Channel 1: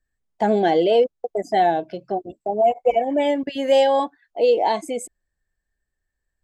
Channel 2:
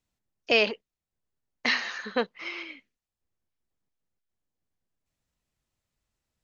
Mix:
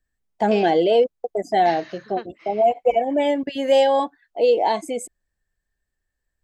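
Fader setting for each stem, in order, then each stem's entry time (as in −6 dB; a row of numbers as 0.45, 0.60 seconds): 0.0, −10.5 decibels; 0.00, 0.00 seconds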